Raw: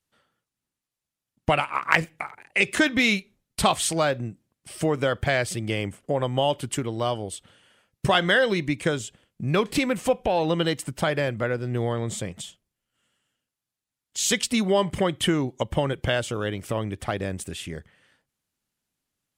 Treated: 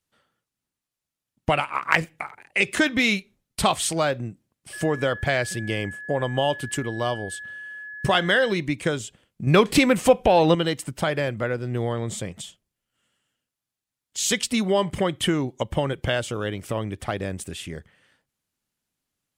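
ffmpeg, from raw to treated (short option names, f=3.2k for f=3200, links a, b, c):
-filter_complex "[0:a]asettb=1/sr,asplit=3[a][b][c];[a]atrim=end=4.734[d];[b]atrim=start=4.73:end=8.52,asetpts=PTS-STARTPTS,afade=t=in:d=0.004:c=qsin,afade=t=out:st=3.786:d=0.004:c=qsin,aeval=exprs='val(0)+0.0178*sin(2*PI*1700*n/s)':c=same[e];[c]atrim=start=8.516[f];[d][e]acrossfade=d=0.004:c1=hsin:c2=qsin[g];[g][f]acrossfade=d=0.004:c1=qsin:c2=hsin,asplit=3[h][i][j];[h]atrim=end=9.472[k];[i]atrim=start=9.468:end=10.552,asetpts=PTS-STARTPTS,volume=6dB[l];[j]atrim=start=10.548[m];[k][l]acrossfade=d=0.004:c1=hsin:c2=hsin[n];[n][m]acrossfade=d=0.004:c1=hsin:c2=hsin"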